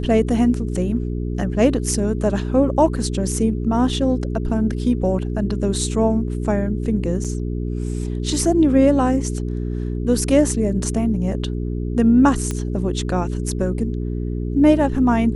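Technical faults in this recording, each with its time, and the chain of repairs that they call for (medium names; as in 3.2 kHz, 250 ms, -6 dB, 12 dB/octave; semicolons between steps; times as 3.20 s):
hum 60 Hz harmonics 7 -24 dBFS
7.24–7.25 s: dropout 6.4 ms
12.51 s: pop -11 dBFS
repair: de-click; de-hum 60 Hz, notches 7; interpolate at 7.24 s, 6.4 ms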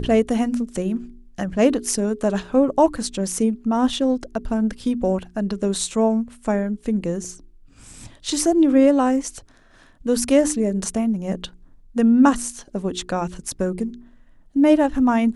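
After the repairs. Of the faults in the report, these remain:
nothing left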